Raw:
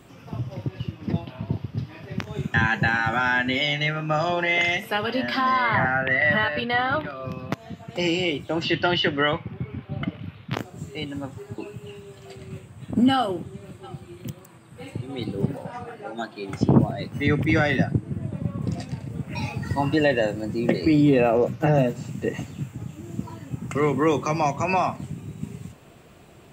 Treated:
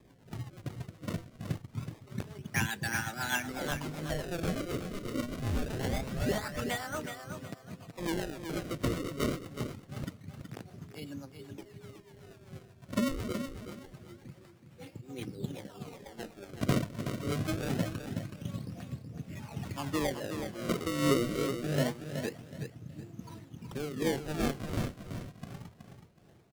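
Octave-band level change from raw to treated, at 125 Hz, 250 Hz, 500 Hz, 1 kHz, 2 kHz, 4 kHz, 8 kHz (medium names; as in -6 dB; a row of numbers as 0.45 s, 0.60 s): -9.5 dB, -10.5 dB, -11.0 dB, -15.5 dB, -15.0 dB, -12.0 dB, +1.5 dB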